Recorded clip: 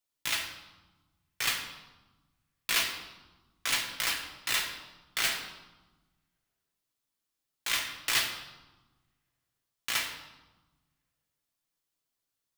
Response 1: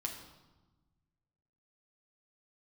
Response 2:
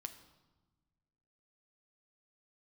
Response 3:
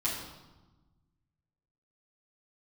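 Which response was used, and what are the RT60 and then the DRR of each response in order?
1; 1.2, 1.3, 1.1 seconds; 0.5, 7.0, −8.5 decibels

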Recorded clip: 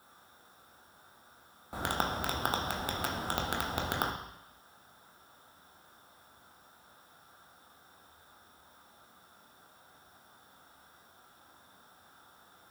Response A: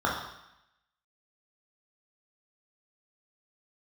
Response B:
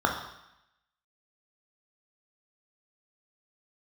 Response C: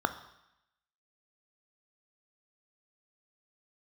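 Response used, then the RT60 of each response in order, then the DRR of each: B; 0.85, 0.85, 0.85 seconds; −4.0, 0.5, 9.5 decibels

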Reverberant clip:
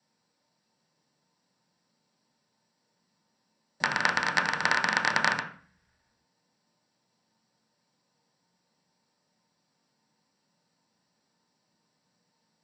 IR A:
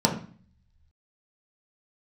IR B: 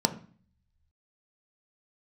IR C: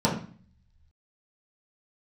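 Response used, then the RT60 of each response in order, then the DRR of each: A; 0.45, 0.45, 0.45 seconds; −1.0, 7.0, −6.5 decibels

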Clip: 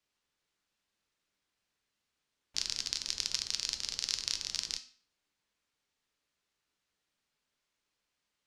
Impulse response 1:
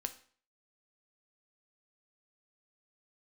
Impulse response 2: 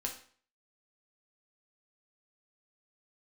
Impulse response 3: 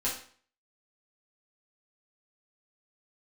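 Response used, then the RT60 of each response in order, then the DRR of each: 1; 0.50, 0.50, 0.50 seconds; 7.5, 0.0, −8.0 decibels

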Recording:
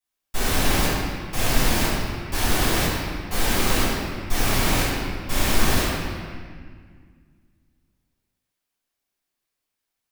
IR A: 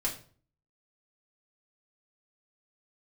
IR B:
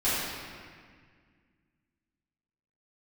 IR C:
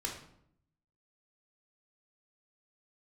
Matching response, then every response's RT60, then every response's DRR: B; 0.45, 1.8, 0.70 seconds; −5.0, −14.5, −1.0 decibels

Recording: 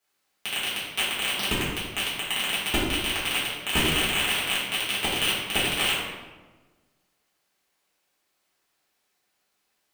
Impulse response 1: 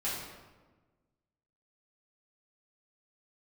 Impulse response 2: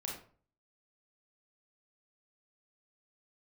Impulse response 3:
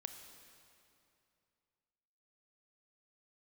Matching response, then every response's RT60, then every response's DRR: 1; 1.3, 0.45, 2.7 seconds; −10.5, −2.5, 6.5 decibels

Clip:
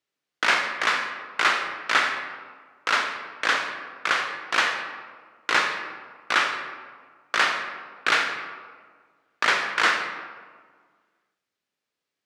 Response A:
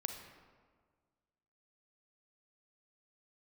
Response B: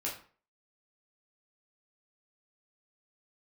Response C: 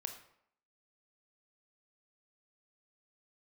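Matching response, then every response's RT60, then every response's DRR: A; 1.7, 0.40, 0.70 seconds; 5.0, −5.0, 5.5 decibels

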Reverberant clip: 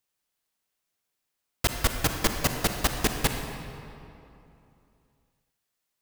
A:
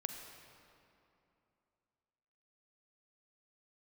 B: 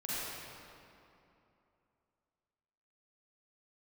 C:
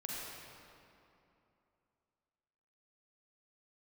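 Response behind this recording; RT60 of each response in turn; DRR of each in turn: A; 2.8, 2.8, 2.8 seconds; 4.5, −10.0, −5.0 decibels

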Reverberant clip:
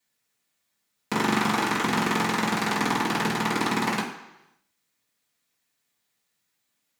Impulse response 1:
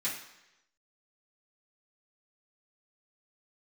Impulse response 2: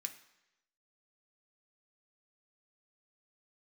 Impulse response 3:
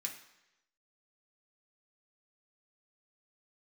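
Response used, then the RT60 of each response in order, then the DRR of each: 1; 0.95, 0.95, 0.95 seconds; −10.0, 5.0, −0.5 decibels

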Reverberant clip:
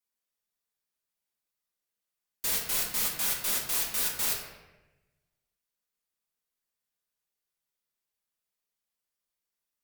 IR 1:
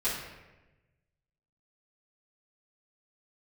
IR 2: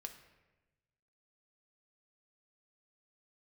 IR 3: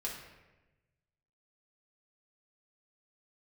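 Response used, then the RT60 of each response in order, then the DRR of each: 3; 1.1, 1.1, 1.1 seconds; −13.0, 5.0, −4.0 decibels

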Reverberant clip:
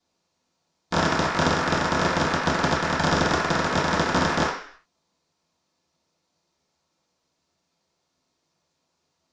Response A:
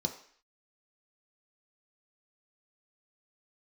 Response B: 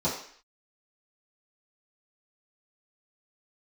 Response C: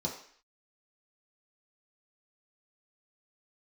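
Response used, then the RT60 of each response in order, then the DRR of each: B; 0.55, 0.55, 0.55 seconds; 3.0, −11.0, −3.0 decibels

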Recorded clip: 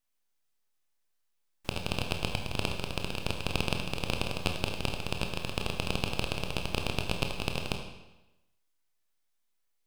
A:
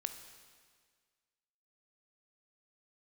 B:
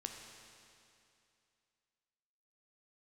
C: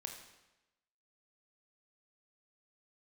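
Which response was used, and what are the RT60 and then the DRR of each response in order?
C; 1.7, 2.6, 1.0 seconds; 7.5, 2.5, 3.0 decibels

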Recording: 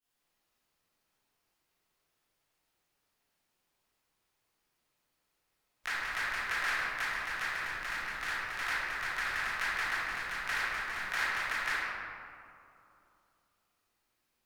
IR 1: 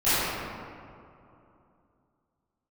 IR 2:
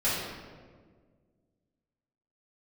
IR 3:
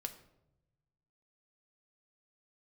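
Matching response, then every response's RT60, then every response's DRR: 1; 2.8, 1.7, 0.90 seconds; −19.0, −11.5, 6.0 decibels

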